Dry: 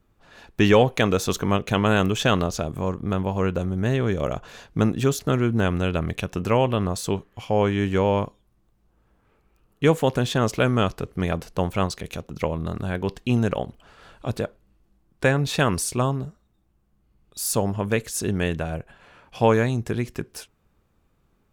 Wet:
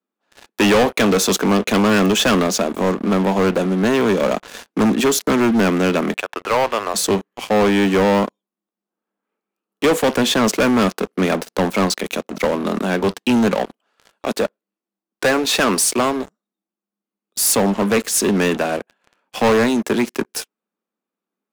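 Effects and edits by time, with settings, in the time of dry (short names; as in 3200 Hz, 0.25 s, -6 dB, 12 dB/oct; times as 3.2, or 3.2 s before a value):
6.17–6.94 BPF 690–2600 Hz
13.57–16.27 HPF 270 Hz 6 dB/oct
whole clip: steep high-pass 190 Hz 72 dB/oct; sample leveller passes 5; gain -5.5 dB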